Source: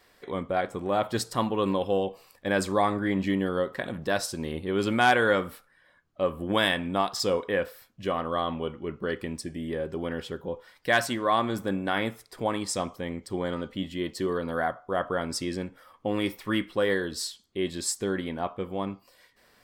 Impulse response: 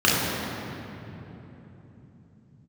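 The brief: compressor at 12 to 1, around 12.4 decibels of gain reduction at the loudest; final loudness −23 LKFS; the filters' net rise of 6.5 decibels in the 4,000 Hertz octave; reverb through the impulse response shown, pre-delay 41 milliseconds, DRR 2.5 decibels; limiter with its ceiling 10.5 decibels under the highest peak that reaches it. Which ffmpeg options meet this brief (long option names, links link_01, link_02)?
-filter_complex "[0:a]equalizer=frequency=4000:width_type=o:gain=8.5,acompressor=threshold=-28dB:ratio=12,alimiter=level_in=3dB:limit=-24dB:level=0:latency=1,volume=-3dB,asplit=2[link_01][link_02];[1:a]atrim=start_sample=2205,adelay=41[link_03];[link_02][link_03]afir=irnorm=-1:irlink=0,volume=-23.5dB[link_04];[link_01][link_04]amix=inputs=2:normalize=0,volume=11.5dB"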